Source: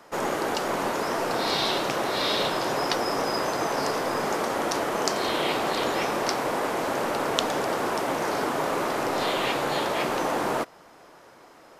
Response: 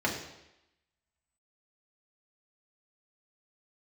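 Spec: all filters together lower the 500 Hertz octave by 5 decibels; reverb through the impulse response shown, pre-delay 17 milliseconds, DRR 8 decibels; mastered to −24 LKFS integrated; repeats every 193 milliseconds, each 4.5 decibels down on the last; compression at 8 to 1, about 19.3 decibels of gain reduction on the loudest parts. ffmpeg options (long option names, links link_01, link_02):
-filter_complex "[0:a]equalizer=frequency=500:width_type=o:gain=-6.5,acompressor=threshold=-42dB:ratio=8,aecho=1:1:193|386|579|772|965|1158|1351|1544|1737:0.596|0.357|0.214|0.129|0.0772|0.0463|0.0278|0.0167|0.01,asplit=2[link_01][link_02];[1:a]atrim=start_sample=2205,adelay=17[link_03];[link_02][link_03]afir=irnorm=-1:irlink=0,volume=-18dB[link_04];[link_01][link_04]amix=inputs=2:normalize=0,volume=17.5dB"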